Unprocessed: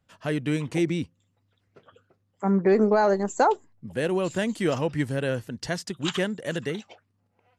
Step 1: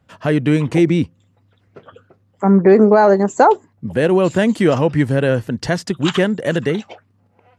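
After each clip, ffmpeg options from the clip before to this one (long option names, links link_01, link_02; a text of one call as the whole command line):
ffmpeg -i in.wav -filter_complex "[0:a]highpass=45,highshelf=frequency=2900:gain=-9,asplit=2[link_01][link_02];[link_02]alimiter=limit=-22dB:level=0:latency=1:release=186,volume=0dB[link_03];[link_01][link_03]amix=inputs=2:normalize=0,volume=7.5dB" out.wav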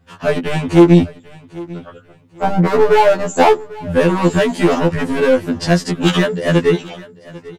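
ffmpeg -i in.wav -af "asoftclip=type=hard:threshold=-12.5dB,aecho=1:1:795|1590:0.0944|0.0255,afftfilt=real='re*2*eq(mod(b,4),0)':imag='im*2*eq(mod(b,4),0)':win_size=2048:overlap=0.75,volume=6.5dB" out.wav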